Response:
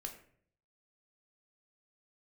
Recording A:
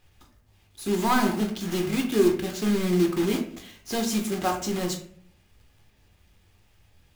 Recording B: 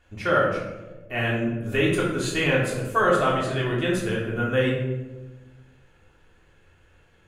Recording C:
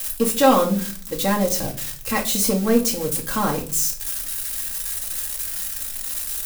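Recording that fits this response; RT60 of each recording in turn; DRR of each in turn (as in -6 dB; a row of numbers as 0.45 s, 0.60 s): A; 0.55 s, 1.2 s, 0.45 s; 3.0 dB, -5.0 dB, -1.0 dB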